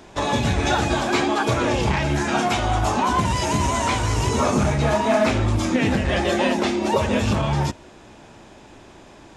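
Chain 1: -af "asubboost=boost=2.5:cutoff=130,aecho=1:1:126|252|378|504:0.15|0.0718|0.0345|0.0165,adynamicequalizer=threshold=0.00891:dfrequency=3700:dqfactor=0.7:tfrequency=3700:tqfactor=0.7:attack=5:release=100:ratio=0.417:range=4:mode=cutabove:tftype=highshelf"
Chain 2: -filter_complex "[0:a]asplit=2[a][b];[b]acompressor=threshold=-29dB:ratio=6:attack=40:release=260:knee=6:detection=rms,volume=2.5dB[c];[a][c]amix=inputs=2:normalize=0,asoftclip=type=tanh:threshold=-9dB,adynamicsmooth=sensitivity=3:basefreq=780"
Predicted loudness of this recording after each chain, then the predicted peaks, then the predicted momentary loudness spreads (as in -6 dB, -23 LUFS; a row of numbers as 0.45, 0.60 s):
-20.0, -19.0 LUFS; -6.5, -10.0 dBFS; 3, 2 LU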